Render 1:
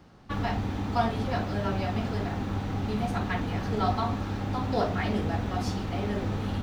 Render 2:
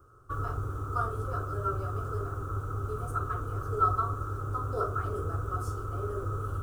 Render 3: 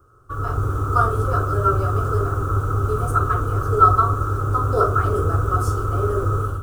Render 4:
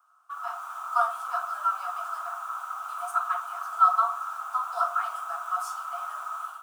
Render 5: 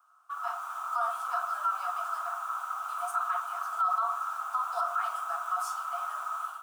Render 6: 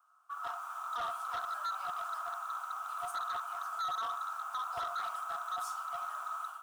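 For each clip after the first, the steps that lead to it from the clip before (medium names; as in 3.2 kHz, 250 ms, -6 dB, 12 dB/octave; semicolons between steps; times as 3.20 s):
FFT filter 130 Hz 0 dB, 190 Hz -27 dB, 400 Hz +2 dB, 860 Hz -17 dB, 1.3 kHz +12 dB, 1.9 kHz -26 dB, 3 kHz -20 dB, 4.3 kHz -21 dB, 8.5 kHz +4 dB; trim -1.5 dB
level rider gain up to 10 dB; trim +3 dB
rippled Chebyshev high-pass 670 Hz, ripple 6 dB
peak limiter -20.5 dBFS, peak gain reduction 11.5 dB
overload inside the chain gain 28.5 dB; trim -4.5 dB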